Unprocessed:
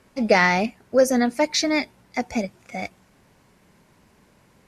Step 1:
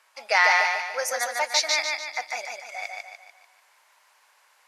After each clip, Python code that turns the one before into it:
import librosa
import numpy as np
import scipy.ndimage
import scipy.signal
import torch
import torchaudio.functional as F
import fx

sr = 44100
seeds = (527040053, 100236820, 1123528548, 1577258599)

y = scipy.signal.sosfilt(scipy.signal.butter(4, 800.0, 'highpass', fs=sr, output='sos'), x)
y = fx.echo_feedback(y, sr, ms=147, feedback_pct=45, wet_db=-3.0)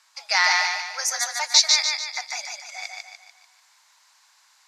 y = scipy.signal.sosfilt(scipy.signal.butter(4, 770.0, 'highpass', fs=sr, output='sos'), x)
y = fx.band_shelf(y, sr, hz=5300.0, db=9.0, octaves=1.3)
y = F.gain(torch.from_numpy(y), -1.0).numpy()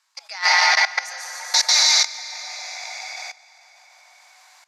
y = fx.rev_plate(x, sr, seeds[0], rt60_s=3.8, hf_ratio=0.7, predelay_ms=115, drr_db=-3.5)
y = fx.level_steps(y, sr, step_db=18)
y = F.gain(torch.from_numpy(y), 2.5).numpy()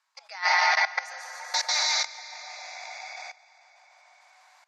y = fx.spec_gate(x, sr, threshold_db=-30, keep='strong')
y = fx.high_shelf(y, sr, hz=2700.0, db=-11.0)
y = F.gain(torch.from_numpy(y), -2.0).numpy()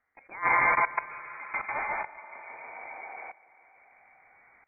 y = fx.freq_invert(x, sr, carrier_hz=3000)
y = F.gain(torch.from_numpy(y), -1.0).numpy()